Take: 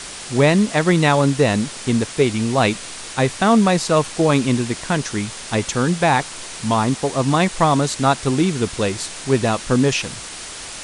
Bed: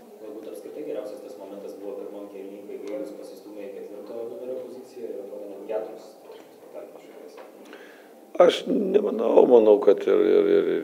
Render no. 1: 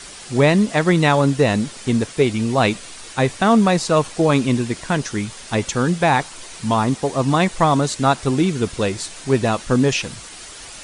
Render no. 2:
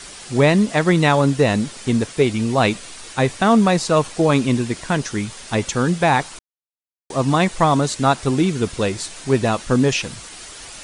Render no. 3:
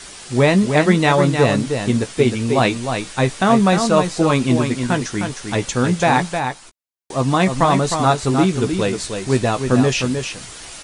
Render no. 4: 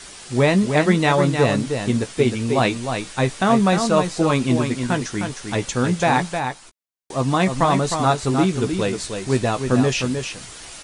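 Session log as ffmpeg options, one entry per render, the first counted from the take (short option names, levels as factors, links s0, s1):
-af "afftdn=nr=7:nf=-34"
-filter_complex "[0:a]asplit=3[s0][s1][s2];[s0]atrim=end=6.39,asetpts=PTS-STARTPTS,afade=t=out:st=6.386:d=0.004:c=hsin[s3];[s1]atrim=start=6.39:end=7.1,asetpts=PTS-STARTPTS,volume=0[s4];[s2]atrim=start=7.1,asetpts=PTS-STARTPTS,afade=t=in:d=0.004:c=hsin[s5];[s3][s4][s5]concat=n=3:v=0:a=1"
-filter_complex "[0:a]asplit=2[s0][s1];[s1]adelay=16,volume=0.335[s2];[s0][s2]amix=inputs=2:normalize=0,aecho=1:1:309:0.473"
-af "volume=0.75"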